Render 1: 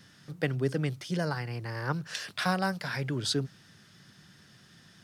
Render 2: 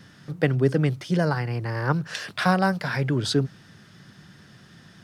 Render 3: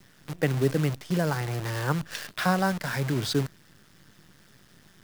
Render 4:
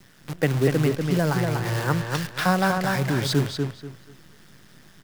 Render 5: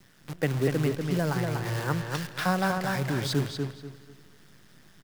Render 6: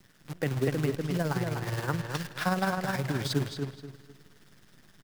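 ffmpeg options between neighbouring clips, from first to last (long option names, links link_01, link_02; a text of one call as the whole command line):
ffmpeg -i in.wav -af "highshelf=frequency=2500:gain=-8,volume=8.5dB" out.wav
ffmpeg -i in.wav -af "acrusher=bits=6:dc=4:mix=0:aa=0.000001,volume=-3.5dB" out.wav
ffmpeg -i in.wav -filter_complex "[0:a]asplit=2[link_01][link_02];[link_02]adelay=242,lowpass=frequency=4300:poles=1,volume=-4dB,asplit=2[link_03][link_04];[link_04]adelay=242,lowpass=frequency=4300:poles=1,volume=0.26,asplit=2[link_05][link_06];[link_06]adelay=242,lowpass=frequency=4300:poles=1,volume=0.26,asplit=2[link_07][link_08];[link_08]adelay=242,lowpass=frequency=4300:poles=1,volume=0.26[link_09];[link_01][link_03][link_05][link_07][link_09]amix=inputs=5:normalize=0,volume=3dB" out.wav
ffmpeg -i in.wav -af "aecho=1:1:166|332|498|664|830:0.0891|0.0517|0.03|0.0174|0.0101,volume=-5dB" out.wav
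ffmpeg -i in.wav -af "tremolo=f=19:d=0.5" out.wav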